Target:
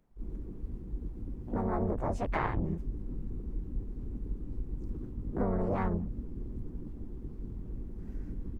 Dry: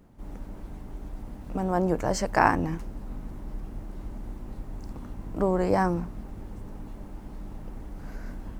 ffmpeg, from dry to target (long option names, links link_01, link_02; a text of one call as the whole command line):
ffmpeg -i in.wav -filter_complex "[0:a]afwtdn=0.02,asplit=4[link_01][link_02][link_03][link_04];[link_02]asetrate=22050,aresample=44100,atempo=2,volume=-5dB[link_05];[link_03]asetrate=52444,aresample=44100,atempo=0.840896,volume=-2dB[link_06];[link_04]asetrate=55563,aresample=44100,atempo=0.793701,volume=-5dB[link_07];[link_01][link_05][link_06][link_07]amix=inputs=4:normalize=0,acrossover=split=120[link_08][link_09];[link_09]acompressor=threshold=-27dB:ratio=6[link_10];[link_08][link_10]amix=inputs=2:normalize=0,volume=-3dB" out.wav